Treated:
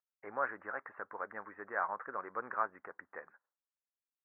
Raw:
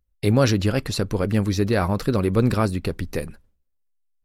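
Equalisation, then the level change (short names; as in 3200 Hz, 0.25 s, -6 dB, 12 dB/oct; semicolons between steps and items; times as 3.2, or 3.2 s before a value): Butterworth band-pass 1400 Hz, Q 0.98; steep low-pass 1800 Hz 48 dB/oct; -5.5 dB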